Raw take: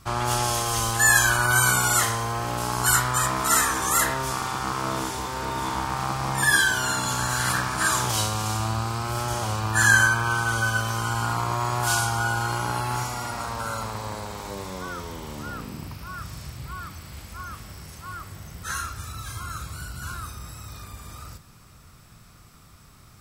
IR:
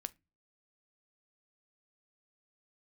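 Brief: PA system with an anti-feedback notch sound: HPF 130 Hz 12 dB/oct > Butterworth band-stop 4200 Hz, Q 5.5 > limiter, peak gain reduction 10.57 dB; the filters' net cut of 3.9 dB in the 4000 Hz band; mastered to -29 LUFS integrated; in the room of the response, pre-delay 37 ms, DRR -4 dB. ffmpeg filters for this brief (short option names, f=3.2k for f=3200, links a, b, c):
-filter_complex "[0:a]equalizer=f=4k:t=o:g=-3.5,asplit=2[a][b];[1:a]atrim=start_sample=2205,adelay=37[c];[b][c]afir=irnorm=-1:irlink=0,volume=7dB[d];[a][d]amix=inputs=2:normalize=0,highpass=130,asuperstop=centerf=4200:order=8:qfactor=5.5,volume=-7dB,alimiter=limit=-18dB:level=0:latency=1"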